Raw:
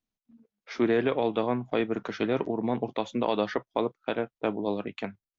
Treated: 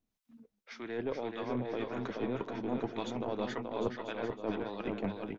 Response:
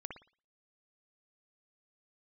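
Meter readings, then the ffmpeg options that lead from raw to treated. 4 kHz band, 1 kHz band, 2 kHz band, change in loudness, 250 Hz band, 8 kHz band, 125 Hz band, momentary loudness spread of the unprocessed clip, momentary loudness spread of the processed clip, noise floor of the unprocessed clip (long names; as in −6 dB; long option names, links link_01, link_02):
−7.5 dB, −8.0 dB, −7.5 dB, −8.0 dB, −7.0 dB, can't be measured, −5.0 dB, 7 LU, 2 LU, below −85 dBFS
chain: -filter_complex "[0:a]areverse,acompressor=threshold=-36dB:ratio=12,areverse,acrossover=split=840[link_01][link_02];[link_01]aeval=exprs='val(0)*(1-0.7/2+0.7/2*cos(2*PI*1.8*n/s))':channel_layout=same[link_03];[link_02]aeval=exprs='val(0)*(1-0.7/2-0.7/2*cos(2*PI*1.8*n/s))':channel_layout=same[link_04];[link_03][link_04]amix=inputs=2:normalize=0,aeval=exprs='0.0316*(cos(1*acos(clip(val(0)/0.0316,-1,1)))-cos(1*PI/2))+0.00447*(cos(2*acos(clip(val(0)/0.0316,-1,1)))-cos(2*PI/2))':channel_layout=same,aecho=1:1:430|752.5|994.4|1176|1312:0.631|0.398|0.251|0.158|0.1,volume=6.5dB"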